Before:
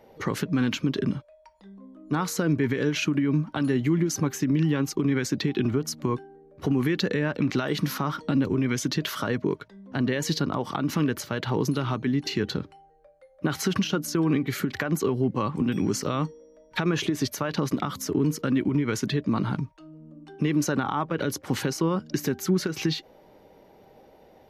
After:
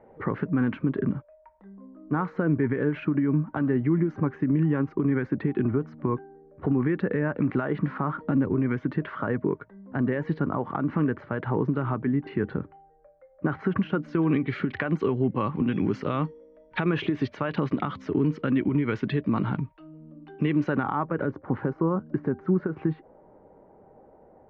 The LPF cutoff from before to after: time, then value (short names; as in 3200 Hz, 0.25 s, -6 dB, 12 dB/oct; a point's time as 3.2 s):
LPF 24 dB/oct
13.74 s 1800 Hz
14.28 s 2900 Hz
20.53 s 2900 Hz
21.43 s 1400 Hz